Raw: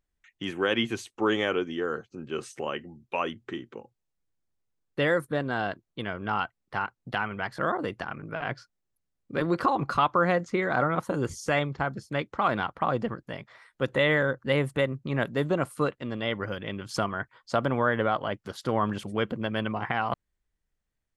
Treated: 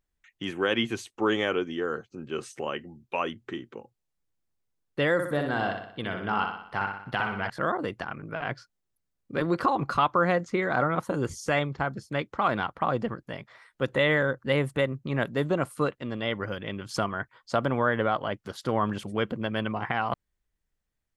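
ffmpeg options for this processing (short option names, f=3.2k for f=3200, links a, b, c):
-filter_complex "[0:a]asettb=1/sr,asplit=3[a][b][c];[a]atrim=end=5.134[d];[b]atrim=start=5.13:end=7.5,asetpts=PTS-STARTPTS,afade=t=in:d=0.004:c=qsin,afade=t=out:st=2.366:d=0.004:c=qsin,aecho=1:1:61|122|183|244|305|366|427:0.531|0.276|0.144|0.0746|0.0388|0.0202|0.0105,atrim=end_sample=104517[e];[c]atrim=start=7.496[f];[d][e]acrossfade=d=0.004:c1=hsin:c2=qsin[g];[g][f]acrossfade=d=0.004:c1=qsin:c2=hsin"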